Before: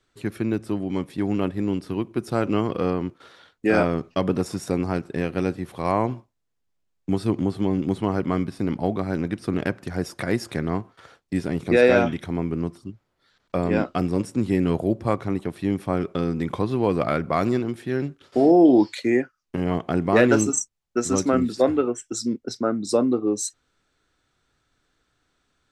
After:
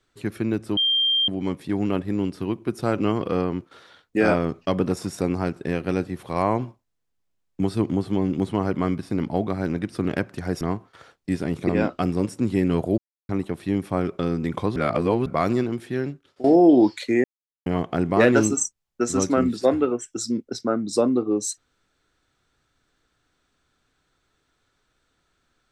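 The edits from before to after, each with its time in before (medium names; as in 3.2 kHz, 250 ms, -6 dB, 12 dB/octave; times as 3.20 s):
0.77 s: add tone 3.18 kHz -17.5 dBFS 0.51 s
10.10–10.65 s: delete
11.73–13.65 s: delete
14.94–15.25 s: mute
16.72–17.22 s: reverse
17.89–18.40 s: fade out, to -19.5 dB
19.20–19.62 s: mute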